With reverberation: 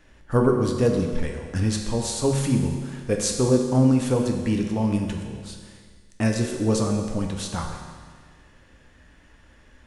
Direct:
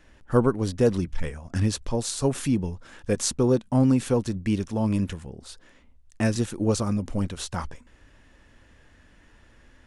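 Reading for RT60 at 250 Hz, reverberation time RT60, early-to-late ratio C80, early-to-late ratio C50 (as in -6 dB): 1.7 s, 1.7 s, 5.5 dB, 4.5 dB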